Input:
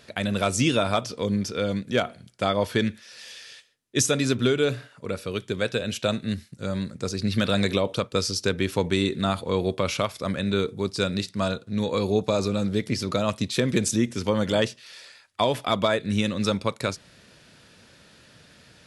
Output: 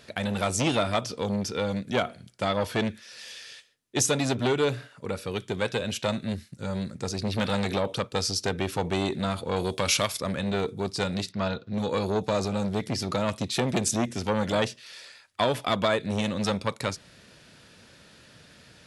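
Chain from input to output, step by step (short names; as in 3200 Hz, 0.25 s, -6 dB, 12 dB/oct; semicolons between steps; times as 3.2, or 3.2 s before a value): 9.56–10.2 high shelf 3200 Hz +12 dB; 11.32–11.74 LPF 5100 Hz 24 dB/oct; core saturation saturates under 1100 Hz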